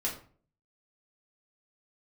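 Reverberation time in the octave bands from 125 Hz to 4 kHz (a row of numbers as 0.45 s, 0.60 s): 0.65 s, 0.55 s, 0.50 s, 0.40 s, 0.35 s, 0.30 s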